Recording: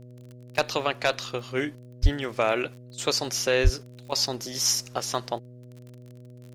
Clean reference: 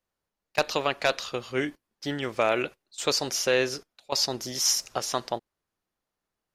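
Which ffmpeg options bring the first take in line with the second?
ffmpeg -i in.wav -filter_complex "[0:a]adeclick=threshold=4,bandreject=frequency=123.5:width_type=h:width=4,bandreject=frequency=247:width_type=h:width=4,bandreject=frequency=370.5:width_type=h:width=4,bandreject=frequency=494:width_type=h:width=4,bandreject=frequency=617.5:width_type=h:width=4,asplit=3[link_01][link_02][link_03];[link_01]afade=type=out:start_time=2.02:duration=0.02[link_04];[link_02]highpass=frequency=140:width=0.5412,highpass=frequency=140:width=1.3066,afade=type=in:start_time=2.02:duration=0.02,afade=type=out:start_time=2.14:duration=0.02[link_05];[link_03]afade=type=in:start_time=2.14:duration=0.02[link_06];[link_04][link_05][link_06]amix=inputs=3:normalize=0,asplit=3[link_07][link_08][link_09];[link_07]afade=type=out:start_time=3.63:duration=0.02[link_10];[link_08]highpass=frequency=140:width=0.5412,highpass=frequency=140:width=1.3066,afade=type=in:start_time=3.63:duration=0.02,afade=type=out:start_time=3.75:duration=0.02[link_11];[link_09]afade=type=in:start_time=3.75:duration=0.02[link_12];[link_10][link_11][link_12]amix=inputs=3:normalize=0" out.wav

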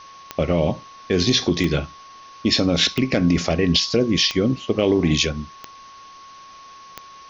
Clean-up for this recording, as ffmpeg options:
ffmpeg -i in.wav -af "adeclick=threshold=4,bandreject=frequency=1100:width=30,afwtdn=0.0056" out.wav

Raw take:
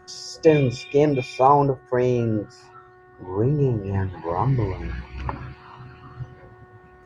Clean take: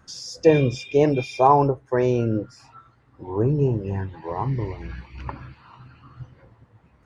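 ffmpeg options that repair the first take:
ffmpeg -i in.wav -af "bandreject=frequency=366.9:width_type=h:width=4,bandreject=frequency=733.8:width_type=h:width=4,bandreject=frequency=1100.7:width_type=h:width=4,bandreject=frequency=1467.6:width_type=h:width=4,bandreject=frequency=1834.5:width_type=h:width=4,asetnsamples=nb_out_samples=441:pad=0,asendcmd='3.94 volume volume -4dB',volume=0dB" out.wav

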